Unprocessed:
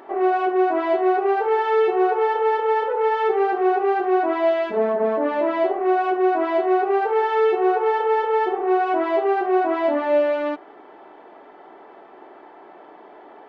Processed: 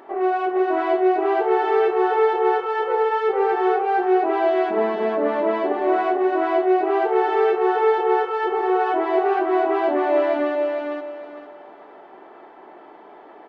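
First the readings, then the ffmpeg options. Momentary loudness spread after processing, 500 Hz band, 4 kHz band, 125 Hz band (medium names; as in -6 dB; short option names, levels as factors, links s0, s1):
4 LU, 0.0 dB, +0.5 dB, no reading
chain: -af "aecho=1:1:454|908|1362|1816:0.708|0.198|0.0555|0.0155,volume=0.841"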